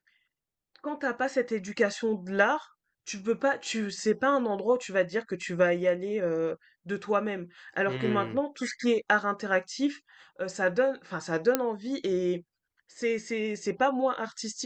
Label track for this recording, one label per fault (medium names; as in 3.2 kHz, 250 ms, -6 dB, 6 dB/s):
11.550000	11.550000	pop -9 dBFS